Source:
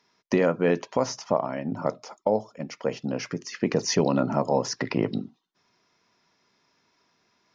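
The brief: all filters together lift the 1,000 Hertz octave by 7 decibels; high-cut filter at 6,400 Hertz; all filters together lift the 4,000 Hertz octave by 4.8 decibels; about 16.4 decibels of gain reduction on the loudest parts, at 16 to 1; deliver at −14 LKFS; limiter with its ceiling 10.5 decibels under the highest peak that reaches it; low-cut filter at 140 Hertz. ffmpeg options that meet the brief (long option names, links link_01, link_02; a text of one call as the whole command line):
ffmpeg -i in.wav -af "highpass=140,lowpass=6400,equalizer=frequency=1000:width_type=o:gain=8.5,equalizer=frequency=4000:width_type=o:gain=8,acompressor=threshold=-31dB:ratio=16,volume=25.5dB,alimiter=limit=-1.5dB:level=0:latency=1" out.wav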